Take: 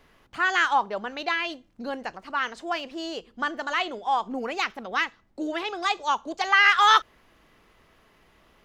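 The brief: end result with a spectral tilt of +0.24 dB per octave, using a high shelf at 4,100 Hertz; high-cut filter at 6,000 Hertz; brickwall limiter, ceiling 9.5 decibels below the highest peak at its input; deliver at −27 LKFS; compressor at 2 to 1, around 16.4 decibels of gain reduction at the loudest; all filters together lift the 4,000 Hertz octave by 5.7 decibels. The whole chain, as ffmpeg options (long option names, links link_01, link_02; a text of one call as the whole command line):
ffmpeg -i in.wav -af "lowpass=6000,equalizer=frequency=4000:width_type=o:gain=6,highshelf=frequency=4100:gain=4,acompressor=threshold=-43dB:ratio=2,volume=13.5dB,alimiter=limit=-16.5dB:level=0:latency=1" out.wav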